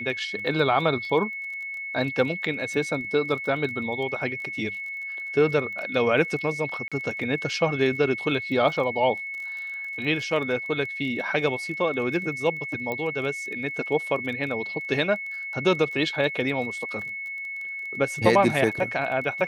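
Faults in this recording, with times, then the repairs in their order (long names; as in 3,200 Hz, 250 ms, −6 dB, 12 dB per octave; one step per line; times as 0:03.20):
surface crackle 21 per second −34 dBFS
whistle 2,200 Hz −31 dBFS
0:06.88–0:06.92: drop-out 36 ms
0:12.92: click −17 dBFS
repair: click removal
notch filter 2,200 Hz, Q 30
repair the gap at 0:06.88, 36 ms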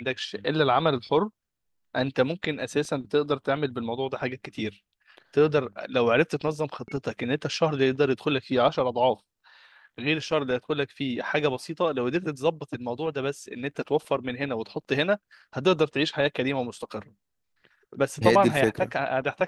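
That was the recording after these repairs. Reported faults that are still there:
none of them is left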